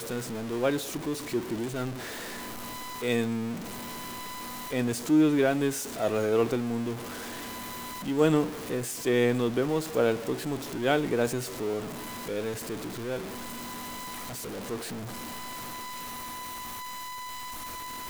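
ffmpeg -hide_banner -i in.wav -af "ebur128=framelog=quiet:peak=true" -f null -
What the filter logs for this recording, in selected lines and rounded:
Integrated loudness:
  I:         -30.4 LUFS
  Threshold: -40.4 LUFS
Loudness range:
  LRA:         9.5 LU
  Threshold: -50.0 LUFS
  LRA low:   -36.8 LUFS
  LRA high:  -27.4 LUFS
True peak:
  Peak:      -10.4 dBFS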